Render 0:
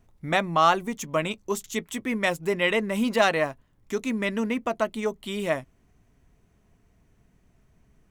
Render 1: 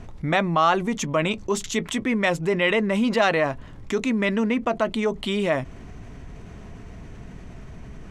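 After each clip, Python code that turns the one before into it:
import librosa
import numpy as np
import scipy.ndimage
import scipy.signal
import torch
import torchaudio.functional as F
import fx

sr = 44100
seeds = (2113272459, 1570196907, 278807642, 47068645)

y = fx.air_absorb(x, sr, metres=75.0)
y = fx.env_flatten(y, sr, amount_pct=50)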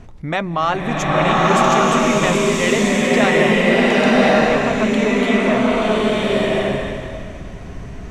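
y = fx.rev_bloom(x, sr, seeds[0], attack_ms=1140, drr_db=-7.5)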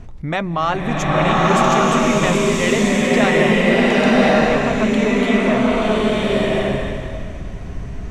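y = fx.low_shelf(x, sr, hz=130.0, db=6.5)
y = y * 10.0 ** (-1.0 / 20.0)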